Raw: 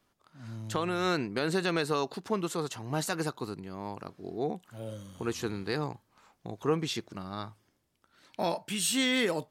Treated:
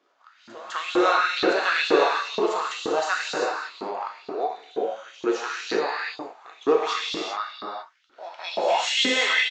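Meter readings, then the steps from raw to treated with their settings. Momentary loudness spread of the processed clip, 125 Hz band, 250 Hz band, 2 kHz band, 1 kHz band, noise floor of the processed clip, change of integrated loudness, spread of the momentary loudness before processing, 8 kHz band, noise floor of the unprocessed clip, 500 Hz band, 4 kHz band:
15 LU, below −15 dB, +2.0 dB, +11.5 dB, +11.0 dB, −60 dBFS, +8.0 dB, 14 LU, +0.5 dB, −74 dBFS, +8.5 dB, +9.0 dB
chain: bass and treble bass −12 dB, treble −6 dB
downsampling to 16,000 Hz
echo ahead of the sound 205 ms −18 dB
reverb whose tail is shaped and stops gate 420 ms flat, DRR −4.5 dB
auto-filter high-pass saw up 2.1 Hz 270–3,900 Hz
level +3.5 dB

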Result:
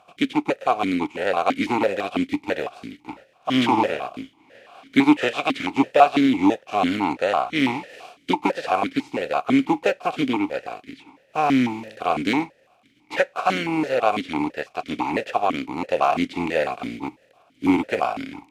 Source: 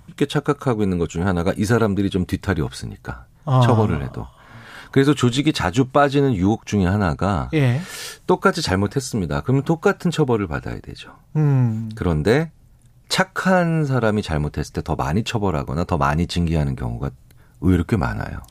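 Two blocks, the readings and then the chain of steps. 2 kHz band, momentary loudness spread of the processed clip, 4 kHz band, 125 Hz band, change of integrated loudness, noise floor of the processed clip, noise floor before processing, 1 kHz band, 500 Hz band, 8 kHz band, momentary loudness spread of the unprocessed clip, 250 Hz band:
−0.5 dB, 13 LU, −2.0 dB, −18.5 dB, −2.5 dB, −60 dBFS, −50 dBFS, +2.5 dB, −2.5 dB, below −10 dB, 12 LU, −1.5 dB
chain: compressing power law on the bin magnitudes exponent 0.45
dynamic equaliser 970 Hz, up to +5 dB, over −28 dBFS, Q 0.73
in parallel at −8.5 dB: sample-and-hold swept by an LFO 14×, swing 160% 0.52 Hz
on the sum: formant filter that steps through the vowels 6 Hz
level +4.5 dB

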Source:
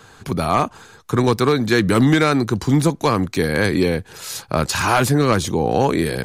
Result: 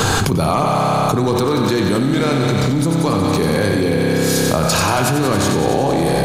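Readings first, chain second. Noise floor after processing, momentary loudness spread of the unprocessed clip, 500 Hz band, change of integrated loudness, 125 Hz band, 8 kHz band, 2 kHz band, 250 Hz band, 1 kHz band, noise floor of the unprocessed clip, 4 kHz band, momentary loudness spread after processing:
−17 dBFS, 9 LU, +2.5 dB, +2.0 dB, +3.0 dB, +6.0 dB, +0.5 dB, +2.0 dB, +2.5 dB, −47 dBFS, +4.0 dB, 1 LU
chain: parametric band 1,800 Hz −6.5 dB 1.2 octaves
feedback echo with a high-pass in the loop 92 ms, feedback 81%, high-pass 850 Hz, level −6.5 dB
spring reverb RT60 3.5 s, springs 30 ms, chirp 25 ms, DRR 1.5 dB
envelope flattener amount 100%
level −6 dB

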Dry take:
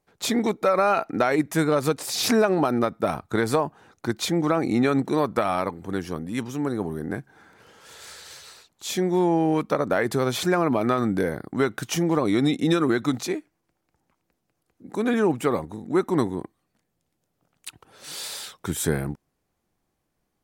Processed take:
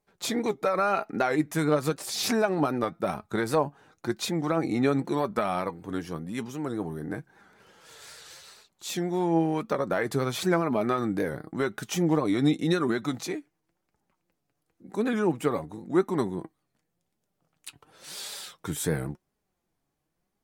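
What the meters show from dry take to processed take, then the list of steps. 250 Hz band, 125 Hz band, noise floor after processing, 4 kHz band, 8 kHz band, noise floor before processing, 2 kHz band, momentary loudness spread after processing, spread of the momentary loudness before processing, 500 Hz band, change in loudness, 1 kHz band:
−4.0 dB, −3.0 dB, −80 dBFS, −4.0 dB, −4.0 dB, −77 dBFS, −4.0 dB, 13 LU, 14 LU, −4.0 dB, −4.0 dB, −4.0 dB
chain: flanger 0.93 Hz, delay 4.6 ms, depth 2.6 ms, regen +56%
wow of a warped record 78 rpm, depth 100 cents

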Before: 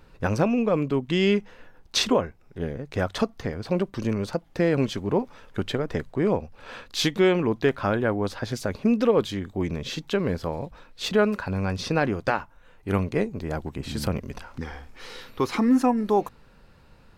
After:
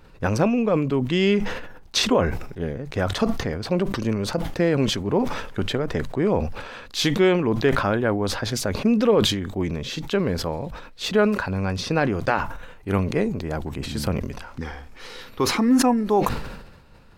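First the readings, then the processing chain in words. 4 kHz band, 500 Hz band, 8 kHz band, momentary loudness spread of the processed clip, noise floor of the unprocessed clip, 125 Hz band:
+4.0 dB, +2.0 dB, +5.5 dB, 13 LU, −54 dBFS, +3.0 dB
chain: level that may fall only so fast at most 54 dB per second
level +1.5 dB

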